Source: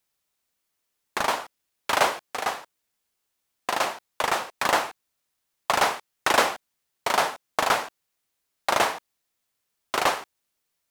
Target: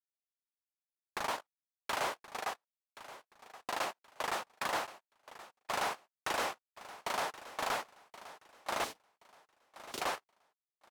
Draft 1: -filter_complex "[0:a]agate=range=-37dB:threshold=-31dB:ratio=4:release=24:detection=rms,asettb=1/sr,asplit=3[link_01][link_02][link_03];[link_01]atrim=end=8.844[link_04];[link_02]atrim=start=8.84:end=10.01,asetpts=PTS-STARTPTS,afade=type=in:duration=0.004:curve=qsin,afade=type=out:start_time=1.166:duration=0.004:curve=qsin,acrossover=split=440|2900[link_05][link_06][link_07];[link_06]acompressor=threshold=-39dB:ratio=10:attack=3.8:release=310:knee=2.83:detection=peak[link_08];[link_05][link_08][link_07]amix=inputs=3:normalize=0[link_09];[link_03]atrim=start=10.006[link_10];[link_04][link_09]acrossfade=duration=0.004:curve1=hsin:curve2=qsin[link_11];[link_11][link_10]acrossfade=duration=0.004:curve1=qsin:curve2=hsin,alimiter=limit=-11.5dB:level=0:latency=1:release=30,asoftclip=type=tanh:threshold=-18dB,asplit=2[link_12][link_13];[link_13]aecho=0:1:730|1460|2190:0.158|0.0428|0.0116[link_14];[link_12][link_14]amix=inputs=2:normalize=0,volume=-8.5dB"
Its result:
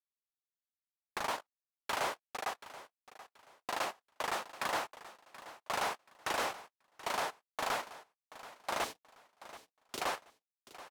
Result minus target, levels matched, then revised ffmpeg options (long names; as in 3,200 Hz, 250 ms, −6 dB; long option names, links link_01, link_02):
echo 345 ms early
-filter_complex "[0:a]agate=range=-37dB:threshold=-31dB:ratio=4:release=24:detection=rms,asettb=1/sr,asplit=3[link_01][link_02][link_03];[link_01]atrim=end=8.844[link_04];[link_02]atrim=start=8.84:end=10.01,asetpts=PTS-STARTPTS,afade=type=in:duration=0.004:curve=qsin,afade=type=out:start_time=1.166:duration=0.004:curve=qsin,acrossover=split=440|2900[link_05][link_06][link_07];[link_06]acompressor=threshold=-39dB:ratio=10:attack=3.8:release=310:knee=2.83:detection=peak[link_08];[link_05][link_08][link_07]amix=inputs=3:normalize=0[link_09];[link_03]atrim=start=10.006[link_10];[link_04][link_09]acrossfade=duration=0.004:curve1=hsin:curve2=qsin[link_11];[link_11][link_10]acrossfade=duration=0.004:curve1=qsin:curve2=hsin,alimiter=limit=-11.5dB:level=0:latency=1:release=30,asoftclip=type=tanh:threshold=-18dB,asplit=2[link_12][link_13];[link_13]aecho=0:1:1075|2150|3225:0.158|0.0428|0.0116[link_14];[link_12][link_14]amix=inputs=2:normalize=0,volume=-8.5dB"